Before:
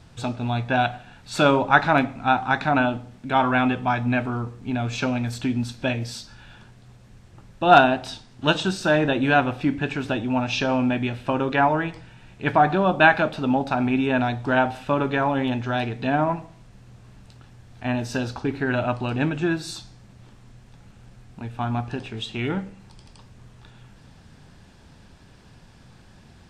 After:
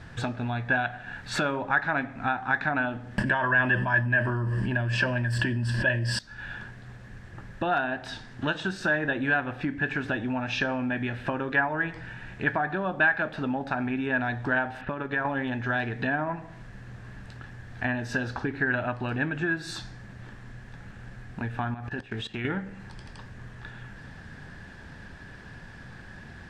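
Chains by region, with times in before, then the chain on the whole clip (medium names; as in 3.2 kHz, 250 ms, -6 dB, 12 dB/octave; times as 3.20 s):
3.18–6.19 s: rippled EQ curve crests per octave 1.3, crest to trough 13 dB + level flattener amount 100%
14.81–15.25 s: level-controlled noise filter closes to 1.9 kHz, open at -18 dBFS + transient shaper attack +9 dB, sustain -7 dB + compression 3:1, threshold -30 dBFS
21.74–22.45 s: treble shelf 7.6 kHz +2 dB + level held to a coarse grid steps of 18 dB + short-mantissa float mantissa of 6-bit
whole clip: treble shelf 4.5 kHz -8.5 dB; compression 4:1, threshold -33 dBFS; peaking EQ 1.7 kHz +13.5 dB 0.4 oct; trim +4 dB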